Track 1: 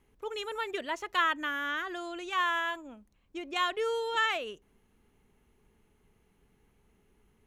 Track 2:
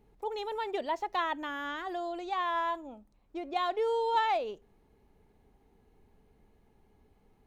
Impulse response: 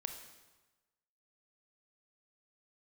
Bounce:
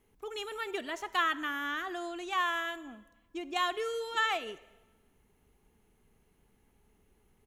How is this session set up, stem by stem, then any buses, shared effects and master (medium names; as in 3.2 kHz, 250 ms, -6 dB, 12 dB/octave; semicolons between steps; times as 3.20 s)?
-6.0 dB, 0.00 s, send -4.5 dB, none
-9.0 dB, 2.1 ms, polarity flipped, no send, none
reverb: on, RT60 1.2 s, pre-delay 23 ms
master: treble shelf 7 kHz +7 dB